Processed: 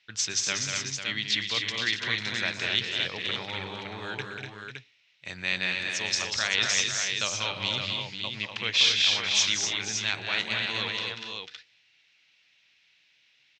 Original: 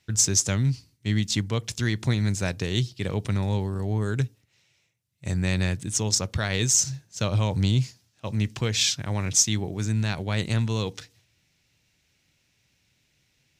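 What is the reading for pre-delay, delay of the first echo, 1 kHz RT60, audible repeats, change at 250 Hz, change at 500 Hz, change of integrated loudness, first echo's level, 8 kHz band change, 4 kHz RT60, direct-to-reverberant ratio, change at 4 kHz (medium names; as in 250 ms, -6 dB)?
no reverb, 119 ms, no reverb, 6, -13.5 dB, -6.5 dB, -1.5 dB, -17.0 dB, -5.5 dB, no reverb, no reverb, +5.5 dB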